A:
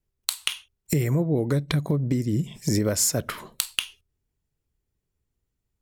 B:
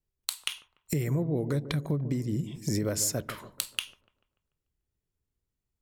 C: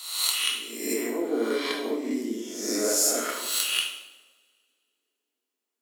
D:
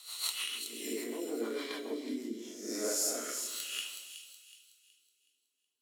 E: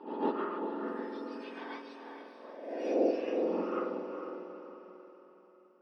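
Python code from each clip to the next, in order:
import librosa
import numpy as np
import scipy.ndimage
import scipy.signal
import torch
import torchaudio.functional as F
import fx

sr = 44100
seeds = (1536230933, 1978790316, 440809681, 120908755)

y1 = fx.echo_wet_lowpass(x, sr, ms=146, feedback_pct=45, hz=830.0, wet_db=-12.0)
y1 = y1 * 10.0 ** (-6.0 / 20.0)
y2 = fx.spec_swells(y1, sr, rise_s=0.89)
y2 = scipy.signal.sosfilt(scipy.signal.butter(12, 240.0, 'highpass', fs=sr, output='sos'), y2)
y2 = fx.rev_double_slope(y2, sr, seeds[0], early_s=0.73, late_s=2.3, knee_db=-26, drr_db=-0.5)
y3 = fx.rotary_switch(y2, sr, hz=6.7, then_hz=0.7, switch_at_s=1.96)
y3 = fx.echo_wet_highpass(y3, sr, ms=371, feedback_pct=37, hz=3700.0, wet_db=-6.0)
y3 = y3 * 10.0 ** (-8.0 / 20.0)
y4 = fx.octave_mirror(y3, sr, pivot_hz=1900.0)
y4 = scipy.signal.sosfilt(scipy.signal.ellip(4, 1.0, 40, 4800.0, 'lowpass', fs=sr, output='sos'), y4)
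y4 = fx.echo_diffused(y4, sr, ms=458, feedback_pct=43, wet_db=-8.0)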